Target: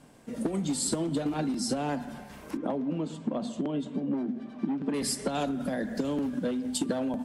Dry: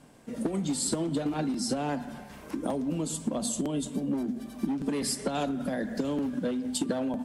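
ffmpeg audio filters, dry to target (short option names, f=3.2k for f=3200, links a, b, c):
-filter_complex "[0:a]asettb=1/sr,asplit=3[a][b][c];[a]atrim=end=2.574[d];[b]atrim=start=2.57:end=4.94,asetpts=PTS-STARTPTS,afade=t=in:d=0.004:c=qsin,afade=t=out:st=2.366:d=0.004:c=qsin,highpass=130,lowpass=2.7k[e];[c]atrim=start=4.936[f];[d][e]acrossfade=d=0.004:c1=hsin:c2=qsin[g];[g][f]acrossfade=d=0.004:c1=qsin:c2=hsin"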